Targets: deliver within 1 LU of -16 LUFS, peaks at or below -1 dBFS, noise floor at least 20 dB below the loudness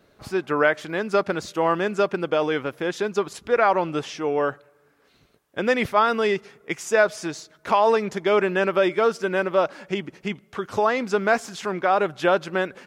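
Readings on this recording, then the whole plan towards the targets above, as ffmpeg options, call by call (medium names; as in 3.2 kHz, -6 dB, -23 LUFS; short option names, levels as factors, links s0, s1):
loudness -23.0 LUFS; peak level -5.0 dBFS; loudness target -16.0 LUFS
-> -af "volume=2.24,alimiter=limit=0.891:level=0:latency=1"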